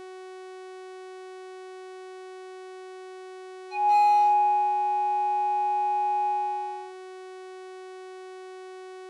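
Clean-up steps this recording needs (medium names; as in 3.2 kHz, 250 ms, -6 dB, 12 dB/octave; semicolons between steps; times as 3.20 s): clip repair -17 dBFS; de-hum 373 Hz, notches 28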